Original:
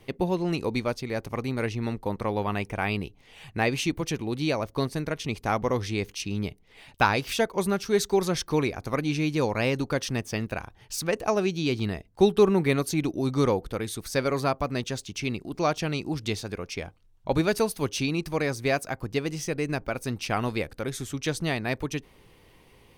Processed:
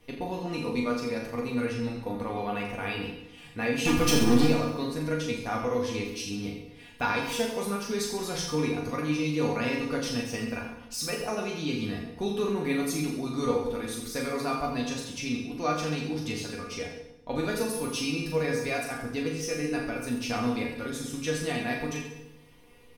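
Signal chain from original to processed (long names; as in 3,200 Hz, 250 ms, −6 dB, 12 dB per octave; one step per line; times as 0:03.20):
0:03.85–0:04.46: leveller curve on the samples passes 5
in parallel at +1 dB: brickwall limiter −19 dBFS, peak gain reduction 12 dB
on the sum: tuned comb filter 240 Hz, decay 0.2 s, harmonics all, mix 90%
on a send: reverse bouncing-ball delay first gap 40 ms, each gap 1.1×, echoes 5
on the sum: feedback delay network reverb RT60 1 s, low-frequency decay 1.2×, high-frequency decay 0.8×, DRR 4.5 dB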